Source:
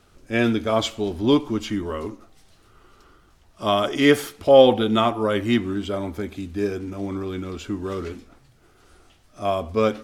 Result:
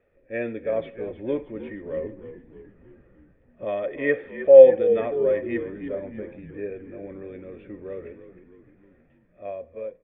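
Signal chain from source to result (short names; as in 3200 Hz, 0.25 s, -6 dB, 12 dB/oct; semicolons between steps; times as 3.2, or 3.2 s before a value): ending faded out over 0.90 s; vocal tract filter e; 1.97–3.65 low shelf 370 Hz +9.5 dB; on a send: frequency-shifting echo 0.311 s, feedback 56%, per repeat -61 Hz, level -12 dB; on the sum: gain +4.5 dB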